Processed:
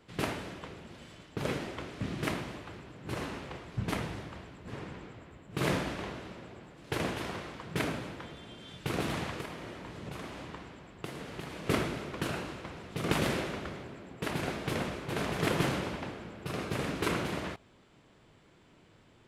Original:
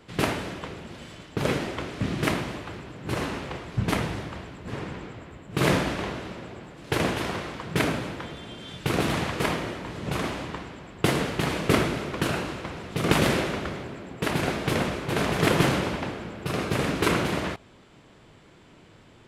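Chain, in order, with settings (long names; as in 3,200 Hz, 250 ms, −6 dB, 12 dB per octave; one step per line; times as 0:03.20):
0:09.40–0:11.67: downward compressor 6 to 1, threshold −30 dBFS, peak gain reduction 12.5 dB
level −8 dB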